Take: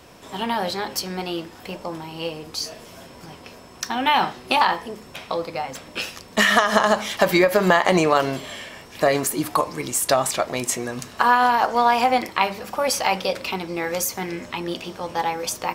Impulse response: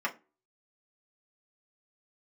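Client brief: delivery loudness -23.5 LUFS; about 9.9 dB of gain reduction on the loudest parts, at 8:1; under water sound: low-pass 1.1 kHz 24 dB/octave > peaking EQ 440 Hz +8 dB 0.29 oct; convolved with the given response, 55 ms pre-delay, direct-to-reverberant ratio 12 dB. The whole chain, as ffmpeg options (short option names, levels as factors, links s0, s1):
-filter_complex "[0:a]acompressor=threshold=0.0794:ratio=8,asplit=2[s0][s1];[1:a]atrim=start_sample=2205,adelay=55[s2];[s1][s2]afir=irnorm=-1:irlink=0,volume=0.1[s3];[s0][s3]amix=inputs=2:normalize=0,lowpass=f=1100:w=0.5412,lowpass=f=1100:w=1.3066,equalizer=f=440:t=o:w=0.29:g=8,volume=1.88"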